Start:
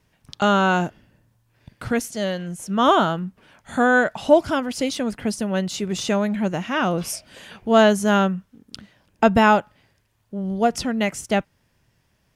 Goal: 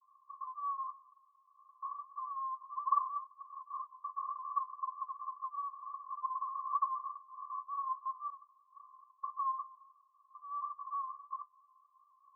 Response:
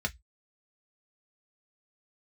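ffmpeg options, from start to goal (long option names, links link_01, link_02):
-af "acompressor=threshold=-21dB:ratio=6,aresample=8000,aeval=exprs='0.422*sin(PI/2*3.16*val(0)/0.422)':channel_layout=same,aresample=44100,flanger=delay=3:depth=6.8:regen=-5:speed=0.33:shape=triangular,asoftclip=type=hard:threshold=-28.5dB,asuperpass=centerf=1100:order=20:qfactor=7.8,volume=8.5dB"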